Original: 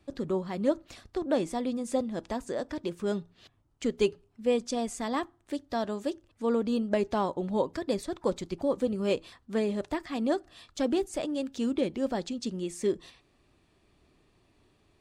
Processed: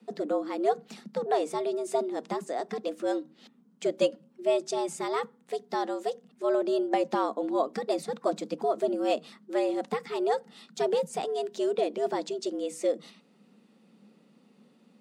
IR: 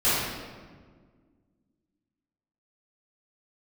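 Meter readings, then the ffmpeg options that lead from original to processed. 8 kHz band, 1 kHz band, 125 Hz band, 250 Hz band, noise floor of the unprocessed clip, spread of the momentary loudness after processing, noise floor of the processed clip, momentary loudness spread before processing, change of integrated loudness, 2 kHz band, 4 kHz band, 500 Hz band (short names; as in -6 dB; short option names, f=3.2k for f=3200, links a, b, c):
0.0 dB, +5.5 dB, -8.5 dB, -3.0 dB, -68 dBFS, 6 LU, -63 dBFS, 6 LU, +1.0 dB, +0.5 dB, +0.5 dB, +2.5 dB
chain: -af "equalizer=f=73:w=1.1:g=14,afreqshift=140"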